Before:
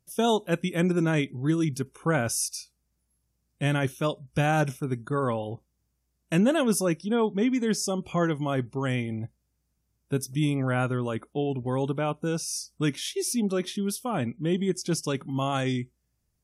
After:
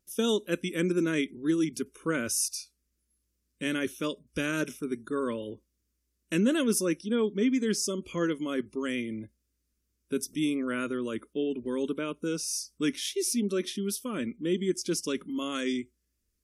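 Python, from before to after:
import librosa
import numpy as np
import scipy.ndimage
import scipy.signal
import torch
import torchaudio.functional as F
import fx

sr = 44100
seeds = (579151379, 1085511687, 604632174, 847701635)

y = fx.fixed_phaser(x, sr, hz=320.0, stages=4)
y = fx.wow_flutter(y, sr, seeds[0], rate_hz=2.1, depth_cents=19.0)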